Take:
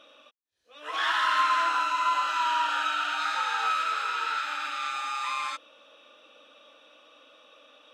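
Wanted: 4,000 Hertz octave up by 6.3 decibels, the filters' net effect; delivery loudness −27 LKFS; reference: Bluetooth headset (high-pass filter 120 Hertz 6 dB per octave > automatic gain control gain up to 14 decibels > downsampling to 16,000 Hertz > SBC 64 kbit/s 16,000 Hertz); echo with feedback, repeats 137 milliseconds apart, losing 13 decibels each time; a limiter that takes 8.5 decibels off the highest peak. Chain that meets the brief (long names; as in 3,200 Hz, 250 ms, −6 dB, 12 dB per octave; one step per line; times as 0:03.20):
parametric band 4,000 Hz +8 dB
brickwall limiter −21 dBFS
high-pass filter 120 Hz 6 dB per octave
repeating echo 137 ms, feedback 22%, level −13 dB
automatic gain control gain up to 14 dB
downsampling to 16,000 Hz
level +1.5 dB
SBC 64 kbit/s 16,000 Hz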